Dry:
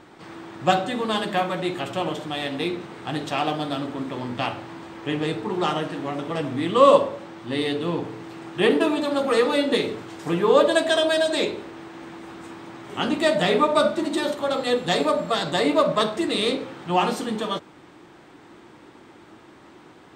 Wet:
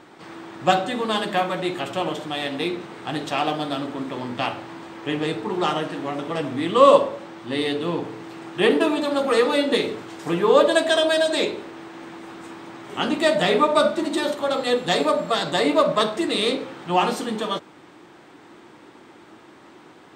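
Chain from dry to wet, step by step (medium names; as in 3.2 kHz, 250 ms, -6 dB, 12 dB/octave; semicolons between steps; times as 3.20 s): bass shelf 88 Hz -12 dB; trim +1.5 dB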